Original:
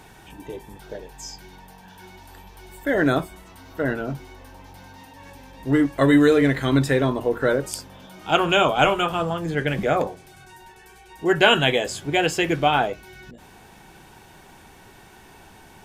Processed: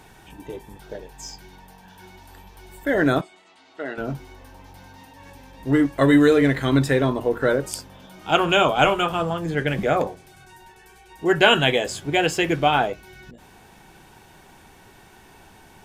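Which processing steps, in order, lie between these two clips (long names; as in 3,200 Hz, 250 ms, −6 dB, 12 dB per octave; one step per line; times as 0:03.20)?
in parallel at −12 dB: slack as between gear wheels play −33 dBFS
0:03.21–0:03.98: on the sum: loudspeaker in its box 470–7,000 Hz, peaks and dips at 520 Hz −8 dB, 1,000 Hz −8 dB, 1,600 Hz −7 dB, 5,700 Hz −8 dB
level −1.5 dB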